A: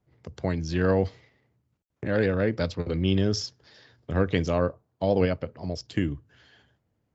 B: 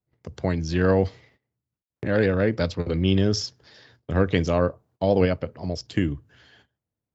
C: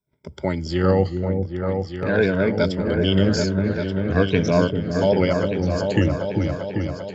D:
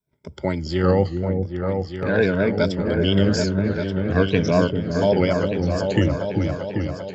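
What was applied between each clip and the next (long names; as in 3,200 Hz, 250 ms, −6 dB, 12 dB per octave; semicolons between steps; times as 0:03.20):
noise gate −59 dBFS, range −16 dB; level +3 dB
rippled gain that drifts along the octave scale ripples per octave 1.6, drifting −0.43 Hz, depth 15 dB; on a send: echo whose low-pass opens from repeat to repeat 394 ms, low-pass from 400 Hz, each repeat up 2 octaves, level −3 dB
pitch vibrato 4.2 Hz 48 cents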